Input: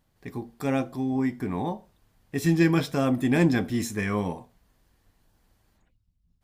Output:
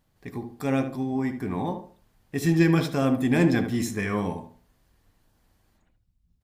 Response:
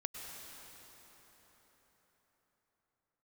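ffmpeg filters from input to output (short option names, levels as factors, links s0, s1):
-filter_complex "[0:a]asplit=2[s0][s1];[s1]adelay=74,lowpass=f=2000:p=1,volume=0.398,asplit=2[s2][s3];[s3]adelay=74,lowpass=f=2000:p=1,volume=0.31,asplit=2[s4][s5];[s5]adelay=74,lowpass=f=2000:p=1,volume=0.31,asplit=2[s6][s7];[s7]adelay=74,lowpass=f=2000:p=1,volume=0.31[s8];[s0][s2][s4][s6][s8]amix=inputs=5:normalize=0"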